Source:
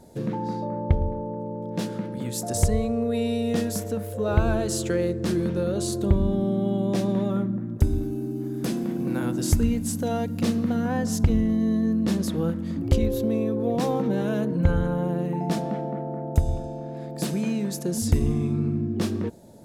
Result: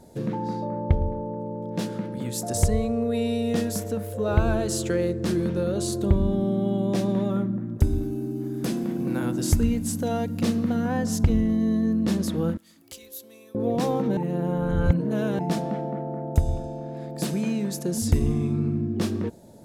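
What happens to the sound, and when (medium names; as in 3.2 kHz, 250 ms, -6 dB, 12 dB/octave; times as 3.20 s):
12.57–13.55 s: differentiator
14.17–15.39 s: reverse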